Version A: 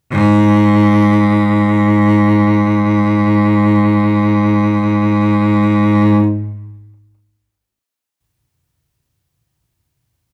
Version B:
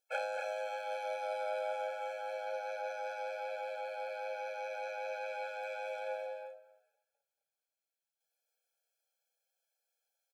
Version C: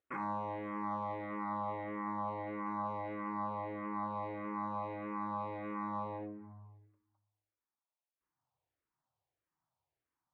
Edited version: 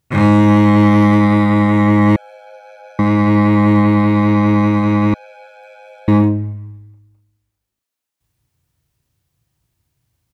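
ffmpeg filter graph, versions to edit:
-filter_complex "[1:a]asplit=2[s0][s1];[0:a]asplit=3[s2][s3][s4];[s2]atrim=end=2.162[s5];[s0]atrim=start=2.158:end=2.992[s6];[s3]atrim=start=2.988:end=5.142[s7];[s1]atrim=start=5.138:end=6.082[s8];[s4]atrim=start=6.078[s9];[s5][s6]acrossfade=d=0.004:c1=hsin:c2=hsin[s10];[s10][s7]acrossfade=d=0.004:c1=hsin:c2=hsin[s11];[s11][s8]acrossfade=d=0.004:c1=hsin:c2=hsin[s12];[s12][s9]acrossfade=d=0.004:c1=hsin:c2=hsin"

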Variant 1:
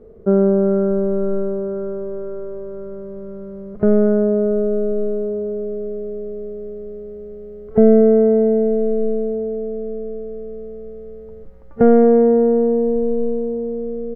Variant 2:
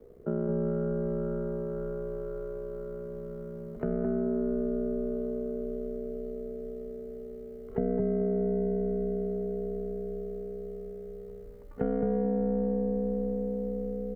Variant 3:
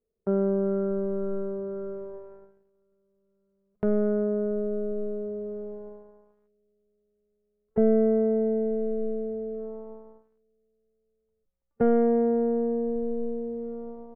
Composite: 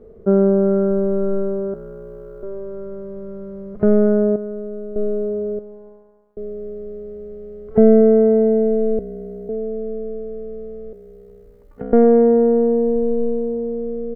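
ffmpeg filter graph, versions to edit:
-filter_complex "[1:a]asplit=3[s0][s1][s2];[2:a]asplit=2[s3][s4];[0:a]asplit=6[s5][s6][s7][s8][s9][s10];[s5]atrim=end=1.742[s11];[s0]atrim=start=1.738:end=2.432[s12];[s6]atrim=start=2.428:end=4.362[s13];[s3]atrim=start=4.358:end=4.962[s14];[s7]atrim=start=4.958:end=5.592[s15];[s4]atrim=start=5.588:end=6.372[s16];[s8]atrim=start=6.368:end=8.992[s17];[s1]atrim=start=8.988:end=9.492[s18];[s9]atrim=start=9.488:end=10.932[s19];[s2]atrim=start=10.928:end=11.932[s20];[s10]atrim=start=11.928[s21];[s11][s12]acrossfade=d=0.004:c1=hsin:c2=hsin[s22];[s22][s13]acrossfade=d=0.004:c1=hsin:c2=hsin[s23];[s23][s14]acrossfade=d=0.004:c1=hsin:c2=hsin[s24];[s24][s15]acrossfade=d=0.004:c1=hsin:c2=hsin[s25];[s25][s16]acrossfade=d=0.004:c1=hsin:c2=hsin[s26];[s26][s17]acrossfade=d=0.004:c1=hsin:c2=hsin[s27];[s27][s18]acrossfade=d=0.004:c1=hsin:c2=hsin[s28];[s28][s19]acrossfade=d=0.004:c1=hsin:c2=hsin[s29];[s29][s20]acrossfade=d=0.004:c1=hsin:c2=hsin[s30];[s30][s21]acrossfade=d=0.004:c1=hsin:c2=hsin"

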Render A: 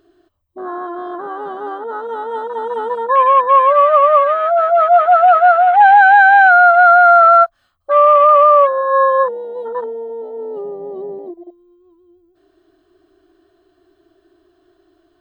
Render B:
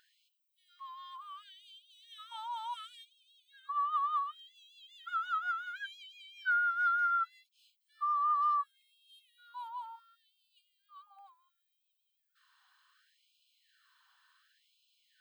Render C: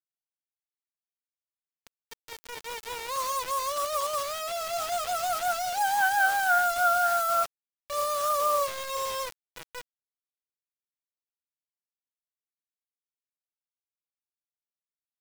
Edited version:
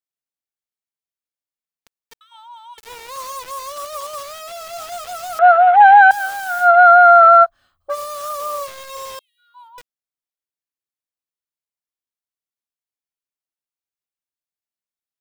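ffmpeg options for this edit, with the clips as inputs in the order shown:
-filter_complex "[1:a]asplit=2[s0][s1];[0:a]asplit=2[s2][s3];[2:a]asplit=5[s4][s5][s6][s7][s8];[s4]atrim=end=2.212[s9];[s0]atrim=start=2.208:end=2.782[s10];[s5]atrim=start=2.778:end=5.392[s11];[s2]atrim=start=5.388:end=6.112[s12];[s6]atrim=start=6.108:end=6.7[s13];[s3]atrim=start=6.6:end=7.96[s14];[s7]atrim=start=7.86:end=9.192[s15];[s1]atrim=start=9.188:end=9.782[s16];[s8]atrim=start=9.778[s17];[s9][s10]acrossfade=d=0.004:c1=hsin:c2=hsin[s18];[s18][s11]acrossfade=d=0.004:c1=hsin:c2=hsin[s19];[s19][s12]acrossfade=d=0.004:c1=hsin:c2=hsin[s20];[s20][s13]acrossfade=d=0.004:c1=hsin:c2=hsin[s21];[s21][s14]acrossfade=d=0.1:c1=tri:c2=tri[s22];[s22][s15]acrossfade=d=0.1:c1=tri:c2=tri[s23];[s23][s16]acrossfade=d=0.004:c1=hsin:c2=hsin[s24];[s24][s17]acrossfade=d=0.004:c1=hsin:c2=hsin"

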